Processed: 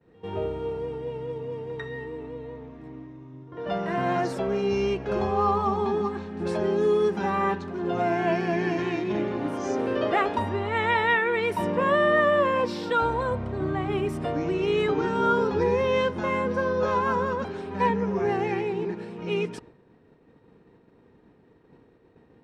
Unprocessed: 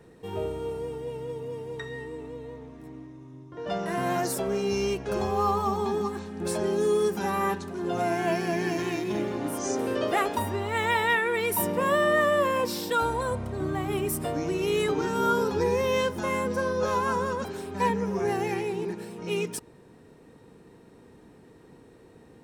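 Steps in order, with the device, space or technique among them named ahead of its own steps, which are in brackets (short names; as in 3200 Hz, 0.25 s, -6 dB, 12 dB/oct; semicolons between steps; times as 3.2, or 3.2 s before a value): hearing-loss simulation (LPF 3300 Hz 12 dB/oct; expander -46 dBFS); pre-echo 98 ms -21 dB; gain +2 dB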